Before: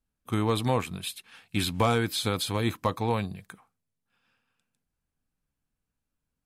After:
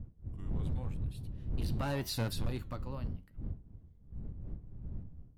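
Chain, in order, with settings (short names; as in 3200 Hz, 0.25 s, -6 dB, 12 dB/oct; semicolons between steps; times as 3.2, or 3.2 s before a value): speed glide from 72% -> 168%; Doppler pass-by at 2.14, 36 m/s, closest 6.1 m; wind noise 100 Hz -36 dBFS; low shelf 400 Hz +7.5 dB; hard clip -21 dBFS, distortion -11 dB; flange 0.85 Hz, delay 7.2 ms, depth 7.3 ms, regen +81%; gain -3.5 dB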